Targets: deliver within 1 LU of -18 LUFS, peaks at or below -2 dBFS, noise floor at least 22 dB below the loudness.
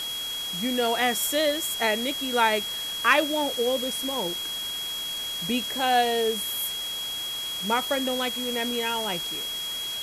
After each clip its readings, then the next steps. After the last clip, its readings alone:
steady tone 3.3 kHz; tone level -30 dBFS; noise floor -32 dBFS; noise floor target -48 dBFS; loudness -25.5 LUFS; peak level -6.5 dBFS; loudness target -18.0 LUFS
-> band-stop 3.3 kHz, Q 30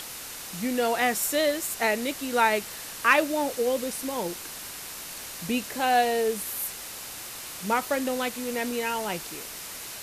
steady tone not found; noise floor -39 dBFS; noise floor target -50 dBFS
-> noise reduction 11 dB, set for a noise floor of -39 dBFS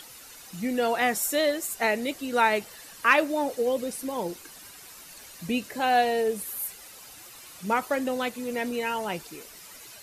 noise floor -47 dBFS; noise floor target -49 dBFS
-> noise reduction 6 dB, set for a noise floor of -47 dBFS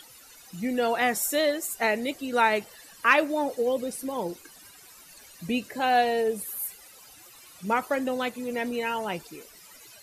noise floor -51 dBFS; loudness -27.0 LUFS; peak level -6.5 dBFS; loudness target -18.0 LUFS
-> trim +9 dB; peak limiter -2 dBFS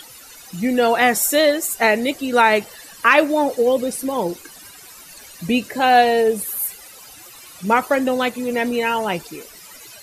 loudness -18.0 LUFS; peak level -2.0 dBFS; noise floor -42 dBFS

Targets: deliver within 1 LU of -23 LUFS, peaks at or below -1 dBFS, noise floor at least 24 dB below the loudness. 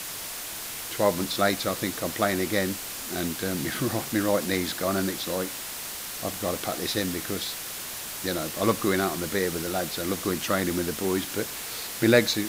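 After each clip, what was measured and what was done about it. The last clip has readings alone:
noise floor -36 dBFS; noise floor target -52 dBFS; loudness -27.5 LUFS; peak level -4.0 dBFS; loudness target -23.0 LUFS
-> noise print and reduce 16 dB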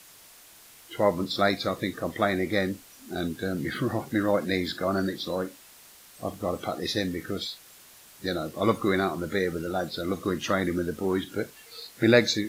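noise floor -52 dBFS; loudness -28.0 LUFS; peak level -4.0 dBFS; loudness target -23.0 LUFS
-> trim +5 dB; peak limiter -1 dBFS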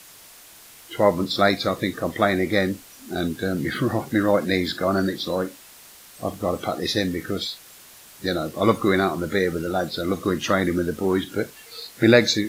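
loudness -23.0 LUFS; peak level -1.0 dBFS; noise floor -47 dBFS

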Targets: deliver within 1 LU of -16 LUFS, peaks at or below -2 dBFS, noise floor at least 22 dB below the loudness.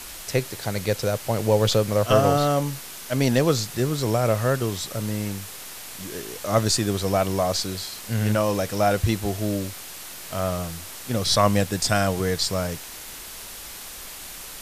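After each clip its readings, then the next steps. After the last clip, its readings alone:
noise floor -39 dBFS; noise floor target -46 dBFS; loudness -23.5 LUFS; peak level -4.0 dBFS; loudness target -16.0 LUFS
-> noise reduction 7 dB, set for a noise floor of -39 dBFS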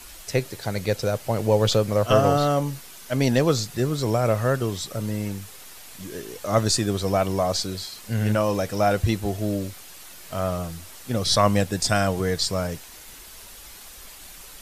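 noise floor -44 dBFS; noise floor target -46 dBFS
-> noise reduction 6 dB, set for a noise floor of -44 dBFS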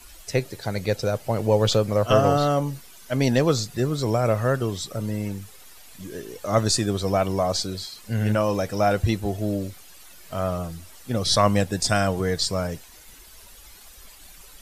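noise floor -47 dBFS; loudness -23.5 LUFS; peak level -4.5 dBFS; loudness target -16.0 LUFS
-> trim +7.5 dB; peak limiter -2 dBFS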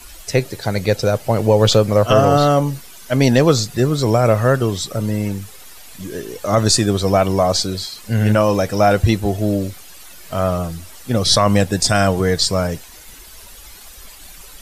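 loudness -16.5 LUFS; peak level -2.0 dBFS; noise floor -40 dBFS

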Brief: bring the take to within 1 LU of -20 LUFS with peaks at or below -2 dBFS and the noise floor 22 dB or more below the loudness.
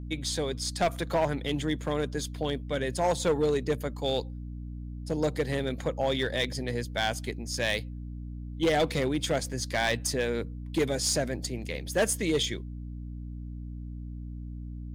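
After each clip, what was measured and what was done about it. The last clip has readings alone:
clipped samples 1.0%; clipping level -19.5 dBFS; hum 60 Hz; highest harmonic 300 Hz; hum level -36 dBFS; loudness -29.5 LUFS; peak level -19.5 dBFS; loudness target -20.0 LUFS
-> clip repair -19.5 dBFS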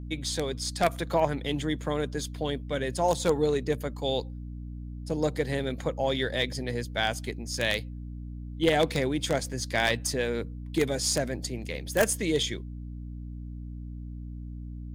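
clipped samples 0.0%; hum 60 Hz; highest harmonic 300 Hz; hum level -36 dBFS
-> hum notches 60/120/180/240/300 Hz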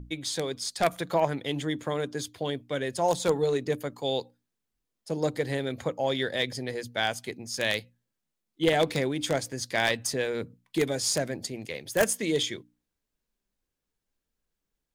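hum not found; loudness -29.0 LUFS; peak level -10.0 dBFS; loudness target -20.0 LUFS
-> trim +9 dB; peak limiter -2 dBFS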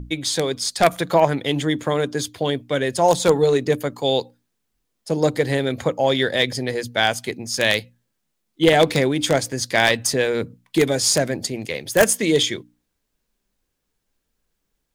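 loudness -20.0 LUFS; peak level -2.0 dBFS; noise floor -76 dBFS

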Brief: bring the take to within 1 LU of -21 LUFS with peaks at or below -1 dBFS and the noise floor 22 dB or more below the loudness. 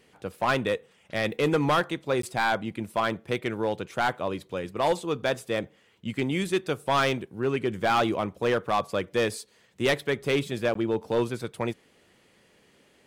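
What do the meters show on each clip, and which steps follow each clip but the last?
clipped samples 1.0%; clipping level -17.5 dBFS; dropouts 2; longest dropout 13 ms; loudness -27.5 LUFS; peak level -17.5 dBFS; loudness target -21.0 LUFS
-> clip repair -17.5 dBFS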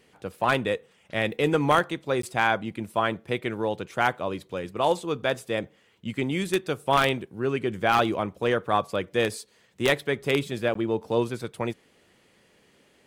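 clipped samples 0.0%; dropouts 2; longest dropout 13 ms
-> interpolate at 2.22/10.74 s, 13 ms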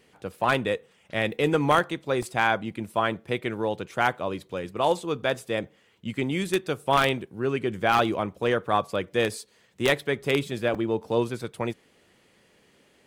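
dropouts 0; loudness -26.5 LUFS; peak level -8.5 dBFS; loudness target -21.0 LUFS
-> trim +5.5 dB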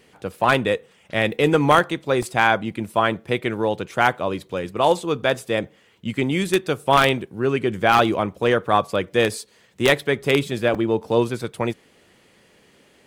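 loudness -21.0 LUFS; peak level -3.0 dBFS; noise floor -56 dBFS

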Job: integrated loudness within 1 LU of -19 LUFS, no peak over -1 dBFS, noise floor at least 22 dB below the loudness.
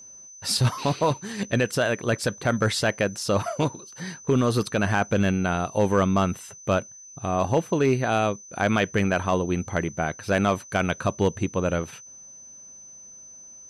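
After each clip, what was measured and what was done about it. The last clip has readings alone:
clipped samples 0.3%; clipping level -12.5 dBFS; steady tone 6.1 kHz; tone level -43 dBFS; loudness -24.5 LUFS; peak level -12.5 dBFS; loudness target -19.0 LUFS
-> clip repair -12.5 dBFS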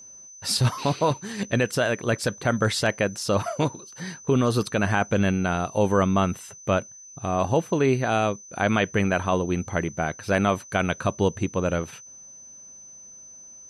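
clipped samples 0.0%; steady tone 6.1 kHz; tone level -43 dBFS
-> band-stop 6.1 kHz, Q 30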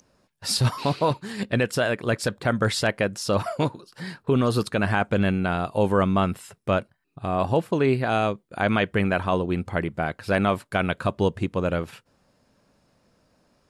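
steady tone not found; loudness -24.5 LUFS; peak level -8.0 dBFS; loudness target -19.0 LUFS
-> trim +5.5 dB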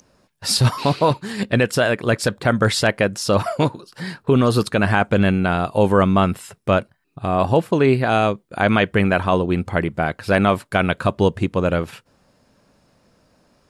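loudness -19.0 LUFS; peak level -2.5 dBFS; noise floor -62 dBFS

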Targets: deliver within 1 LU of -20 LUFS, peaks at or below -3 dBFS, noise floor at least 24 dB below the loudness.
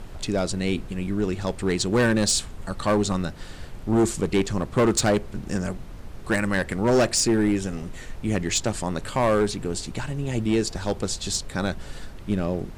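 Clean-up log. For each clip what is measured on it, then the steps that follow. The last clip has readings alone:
clipped samples 1.7%; clipping level -15.0 dBFS; noise floor -40 dBFS; noise floor target -49 dBFS; loudness -24.5 LUFS; peak level -15.0 dBFS; loudness target -20.0 LUFS
-> clip repair -15 dBFS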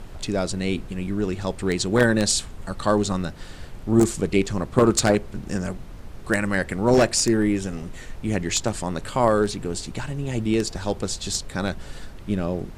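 clipped samples 0.0%; noise floor -40 dBFS; noise floor target -48 dBFS
-> noise print and reduce 8 dB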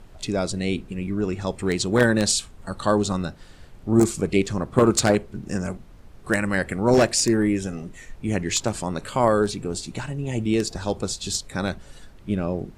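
noise floor -46 dBFS; noise floor target -48 dBFS
-> noise print and reduce 6 dB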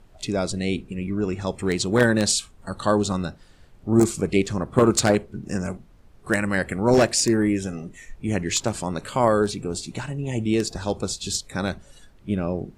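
noise floor -52 dBFS; loudness -23.5 LUFS; peak level -5.5 dBFS; loudness target -20.0 LUFS
-> trim +3.5 dB; peak limiter -3 dBFS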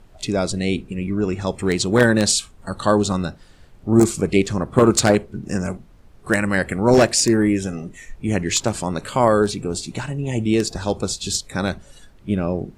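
loudness -20.0 LUFS; peak level -3.0 dBFS; noise floor -48 dBFS

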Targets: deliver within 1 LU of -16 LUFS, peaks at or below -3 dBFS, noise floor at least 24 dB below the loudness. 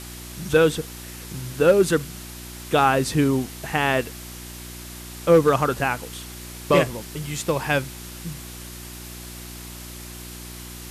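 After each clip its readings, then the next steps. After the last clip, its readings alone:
hum 60 Hz; highest harmonic 360 Hz; hum level -37 dBFS; noise floor -38 dBFS; noise floor target -46 dBFS; loudness -21.5 LUFS; peak level -7.0 dBFS; loudness target -16.0 LUFS
-> de-hum 60 Hz, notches 6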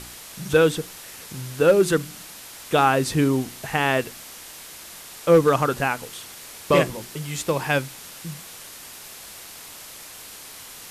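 hum not found; noise floor -41 dBFS; noise floor target -46 dBFS
-> noise print and reduce 6 dB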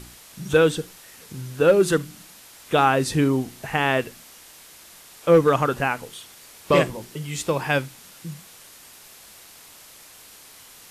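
noise floor -47 dBFS; loudness -21.5 LUFS; peak level -7.0 dBFS; loudness target -16.0 LUFS
-> trim +5.5 dB; peak limiter -3 dBFS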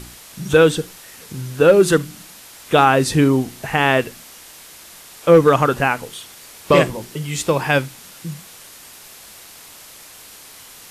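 loudness -16.5 LUFS; peak level -3.0 dBFS; noise floor -42 dBFS

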